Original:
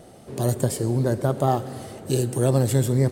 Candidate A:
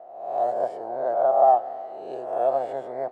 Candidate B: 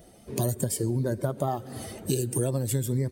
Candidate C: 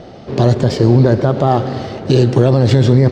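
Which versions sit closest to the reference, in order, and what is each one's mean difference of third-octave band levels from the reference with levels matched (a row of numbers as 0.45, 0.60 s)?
B, C, A; 3.5, 5.0, 14.5 dB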